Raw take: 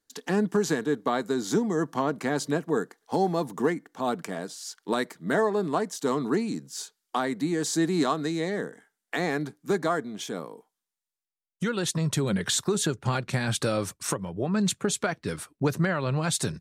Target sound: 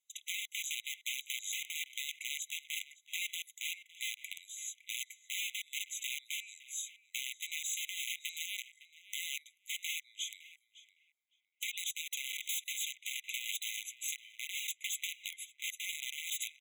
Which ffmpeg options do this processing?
ffmpeg -i in.wav -filter_complex "[0:a]aeval=exprs='(mod(11.9*val(0)+1,2)-1)/11.9':channel_layout=same,acompressor=threshold=-30dB:ratio=6,asplit=2[link_01][link_02];[link_02]adelay=560,lowpass=frequency=1300:poles=1,volume=-9.5dB,asplit=2[link_03][link_04];[link_04]adelay=560,lowpass=frequency=1300:poles=1,volume=0.33,asplit=2[link_05][link_06];[link_06]adelay=560,lowpass=frequency=1300:poles=1,volume=0.33,asplit=2[link_07][link_08];[link_08]adelay=560,lowpass=frequency=1300:poles=1,volume=0.33[link_09];[link_01][link_03][link_05][link_07][link_09]amix=inputs=5:normalize=0,afftfilt=real='re*eq(mod(floor(b*sr/1024/2000),2),1)':imag='im*eq(mod(floor(b*sr/1024/2000),2),1)':win_size=1024:overlap=0.75" out.wav

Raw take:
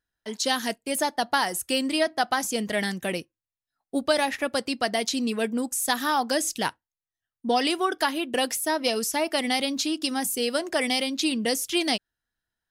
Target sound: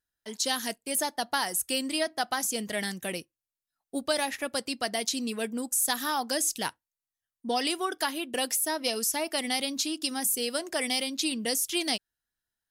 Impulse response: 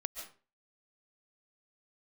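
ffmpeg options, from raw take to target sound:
-af "equalizer=frequency=14000:width_type=o:width=1.9:gain=9,volume=-6dB"

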